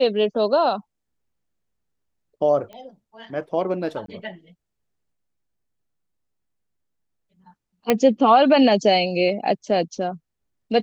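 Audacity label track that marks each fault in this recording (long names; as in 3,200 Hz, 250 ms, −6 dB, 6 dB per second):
2.730000	2.730000	click −27 dBFS
4.060000	4.080000	drop-out 23 ms
7.900000	7.900000	click −4 dBFS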